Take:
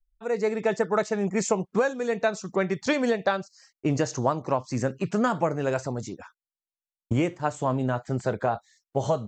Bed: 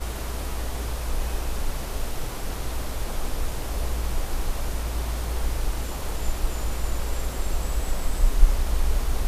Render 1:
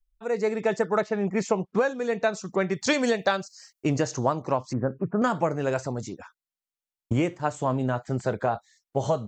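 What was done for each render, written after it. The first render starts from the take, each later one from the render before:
0:01.00–0:02.21: low-pass filter 3,400 Hz → 7,800 Hz
0:02.81–0:03.90: high-shelf EQ 3,600 Hz +10 dB
0:04.73–0:05.22: Butterworth low-pass 1,500 Hz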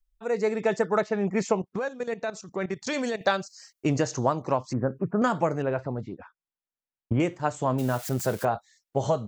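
0:01.59–0:03.21: output level in coarse steps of 14 dB
0:05.62–0:07.20: high-frequency loss of the air 440 metres
0:07.78–0:08.45: spike at every zero crossing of −28.5 dBFS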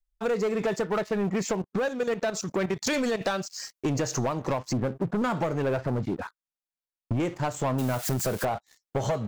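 downward compressor 12 to 1, threshold −31 dBFS, peak gain reduction 14 dB
leveller curve on the samples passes 3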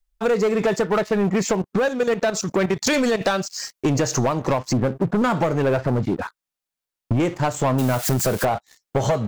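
level +7 dB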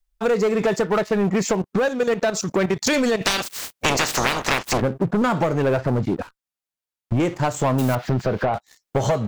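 0:03.25–0:04.80: ceiling on every frequency bin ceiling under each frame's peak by 28 dB
0:06.22–0:07.12: tube saturation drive 40 dB, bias 0.75
0:07.95–0:08.54: high-frequency loss of the air 270 metres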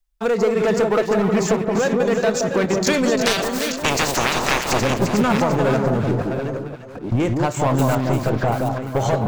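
delay that plays each chunk backwards 549 ms, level −7 dB
delay that swaps between a low-pass and a high-pass 173 ms, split 1,200 Hz, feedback 57%, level −3 dB

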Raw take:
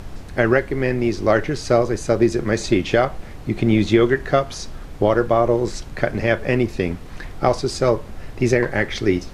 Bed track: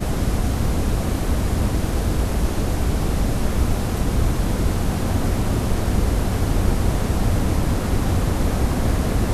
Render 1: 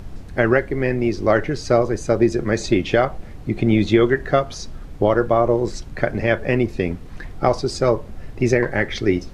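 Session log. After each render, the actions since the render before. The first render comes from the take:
broadband denoise 6 dB, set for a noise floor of −36 dBFS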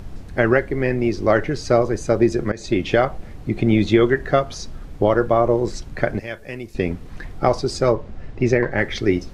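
0:02.52–0:02.95: fade in equal-power, from −18.5 dB
0:06.19–0:06.75: first-order pre-emphasis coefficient 0.8
0:07.92–0:08.78: high-frequency loss of the air 84 metres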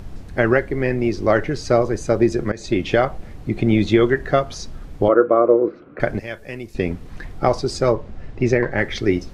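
0:05.08–0:06.00: loudspeaker in its box 270–2,100 Hz, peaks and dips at 310 Hz +8 dB, 490 Hz +7 dB, 870 Hz −10 dB, 1,300 Hz +9 dB, 1,800 Hz −9 dB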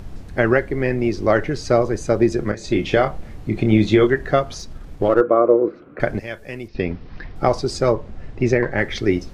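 0:02.49–0:04.07: double-tracking delay 28 ms −8.5 dB
0:04.59–0:05.21: gain on one half-wave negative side −3 dB
0:06.68–0:07.36: elliptic low-pass filter 5,300 Hz, stop band 50 dB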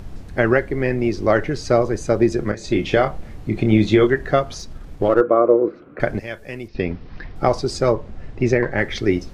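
no processing that can be heard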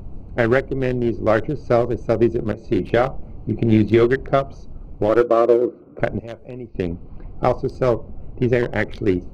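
adaptive Wiener filter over 25 samples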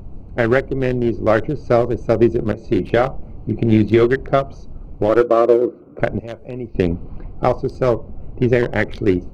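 automatic gain control gain up to 8 dB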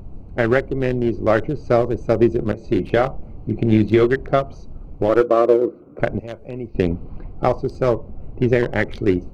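level −1.5 dB

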